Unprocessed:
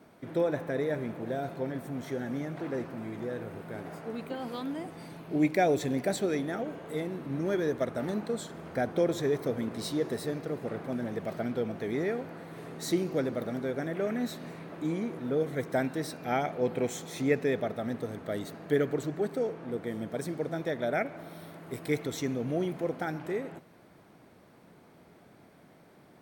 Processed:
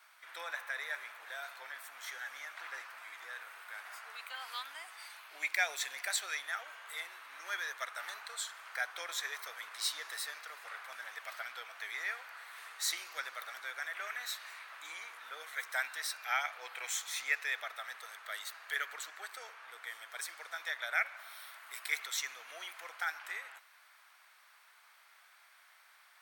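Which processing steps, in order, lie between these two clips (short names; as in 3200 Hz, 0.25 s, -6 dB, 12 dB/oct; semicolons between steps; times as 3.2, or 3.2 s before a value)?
HPF 1200 Hz 24 dB/oct; 12.49–12.98 short-mantissa float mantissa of 4-bit; gain +4.5 dB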